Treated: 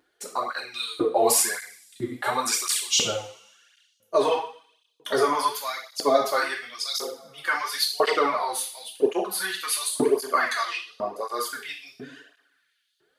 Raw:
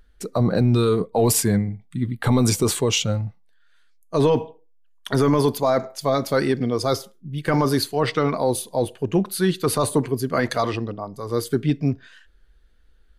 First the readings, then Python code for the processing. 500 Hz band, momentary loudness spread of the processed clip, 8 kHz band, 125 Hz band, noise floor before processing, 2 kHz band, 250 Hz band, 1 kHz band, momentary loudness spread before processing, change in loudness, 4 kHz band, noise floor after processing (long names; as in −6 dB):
−4.0 dB, 13 LU, +1.5 dB, −25.5 dB, −55 dBFS, +3.0 dB, −12.5 dB, +1.0 dB, 10 LU, −3.5 dB, +2.0 dB, −71 dBFS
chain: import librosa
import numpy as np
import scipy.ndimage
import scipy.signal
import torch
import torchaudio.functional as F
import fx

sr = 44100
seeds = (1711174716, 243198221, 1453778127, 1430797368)

y = fx.rev_double_slope(x, sr, seeds[0], early_s=0.48, late_s=1.7, knee_db=-21, drr_db=-1.0)
y = fx.filter_lfo_highpass(y, sr, shape='saw_up', hz=1.0, low_hz=320.0, high_hz=4300.0, q=1.6)
y = fx.flanger_cancel(y, sr, hz=0.93, depth_ms=5.2)